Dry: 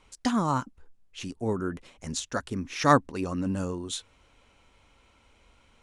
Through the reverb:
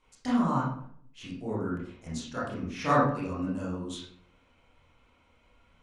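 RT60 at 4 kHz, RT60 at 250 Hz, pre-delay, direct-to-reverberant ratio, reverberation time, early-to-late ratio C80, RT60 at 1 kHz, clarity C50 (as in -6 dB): 0.40 s, 0.75 s, 23 ms, -8.5 dB, 0.60 s, 6.5 dB, 0.55 s, 2.0 dB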